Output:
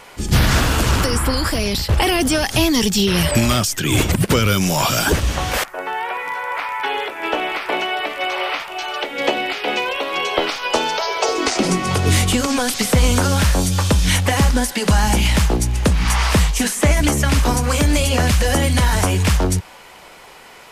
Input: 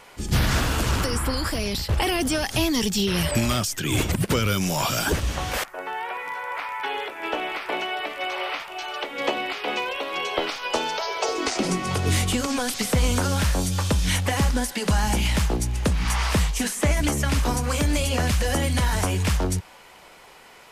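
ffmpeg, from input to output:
ffmpeg -i in.wav -filter_complex "[0:a]asettb=1/sr,asplit=3[link_01][link_02][link_03];[link_01]atrim=end=9.024[link_04];[link_02]atrim=start=9.02:end=9.85,asetpts=PTS-STARTPTS,afade=type=in:duration=0.004:curve=qsin,afade=type=out:start_time=0.826:duration=0.004:curve=qsin,equalizer=frequency=1100:width=5.6:gain=-7[link_05];[link_03]atrim=start=9.846[link_06];[link_04][link_05]acrossfade=duration=0.004:curve1=hsin:curve2=qsin[link_07];[link_07][link_06]acrossfade=duration=0.004:curve1=qsin:curve2=hsin,volume=6.5dB" out.wav

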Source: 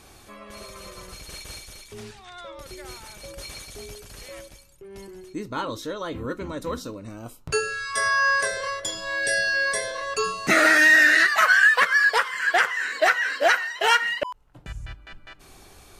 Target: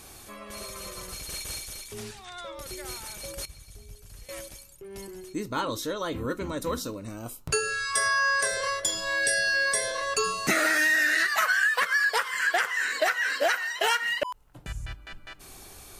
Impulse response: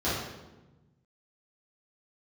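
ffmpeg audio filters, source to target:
-filter_complex "[0:a]asettb=1/sr,asplit=3[link_01][link_02][link_03];[link_01]atrim=end=3.454[link_04];[link_02]atrim=start=3.45:end=4.29,asetpts=PTS-STARTPTS,afade=type=in:duration=0.004:curve=qsin,afade=type=out:start_time=0.836:duration=0.004:curve=qsin,acrossover=split=140[link_05][link_06];[link_06]acompressor=threshold=-55dB:ratio=8[link_07];[link_05][link_07]amix=inputs=2:normalize=0[link_08];[link_03]atrim=start=4.286[link_09];[link_04][link_08]acrossfade=duration=0.004:curve1=hsin:curve2=qsin[link_10];[link_10][link_09]acrossfade=duration=0.004:curve1=qsin:curve2=hsin,highshelf=frequency=7400:gain=11,acompressor=threshold=-22dB:ratio=4"

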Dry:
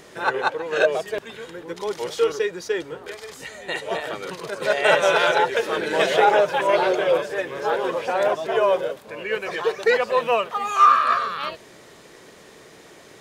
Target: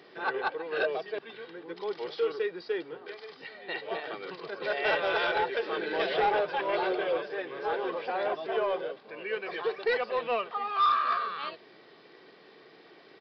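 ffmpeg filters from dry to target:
ffmpeg -i in.wav -af "highpass=frequency=150:width=0.5412,highpass=frequency=150:width=1.3066,aecho=1:1:2.6:0.3,aresample=11025,asoftclip=type=tanh:threshold=-11.5dB,aresample=44100,volume=-8dB" out.wav

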